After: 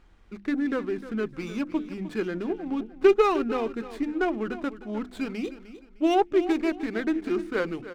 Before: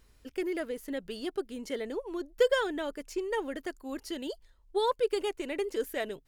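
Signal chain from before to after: varispeed -21%; LPF 3000 Hz 12 dB/oct; notches 50/100/150/200/250/300/350 Hz; feedback echo 0.305 s, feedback 30%, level -14 dB; running maximum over 5 samples; gain +6.5 dB

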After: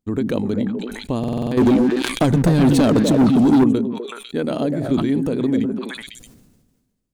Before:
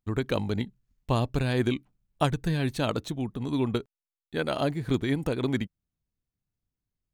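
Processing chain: compressor, threshold -26 dBFS, peak gain reduction 8 dB; ten-band EQ 250 Hz +12 dB, 500 Hz +6 dB, 8000 Hz +5 dB; delay with a stepping band-pass 0.125 s, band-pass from 190 Hz, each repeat 1.4 oct, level -3 dB; 1.57–3.64 sample leveller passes 3; stuck buffer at 1.19, samples 2048, times 6; sustainer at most 41 dB/s

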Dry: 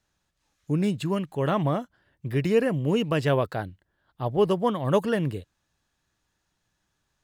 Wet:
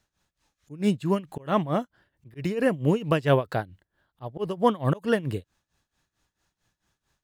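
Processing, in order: auto swell 0.19 s; tremolo 4.5 Hz, depth 86%; gain +4 dB

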